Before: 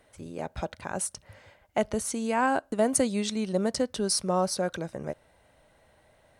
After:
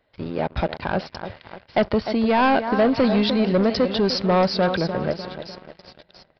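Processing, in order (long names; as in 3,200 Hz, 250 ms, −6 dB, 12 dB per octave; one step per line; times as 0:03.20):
echo with a time of its own for lows and highs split 2,100 Hz, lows 300 ms, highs 682 ms, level −12 dB
leveller curve on the samples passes 3
downsampling to 11,025 Hz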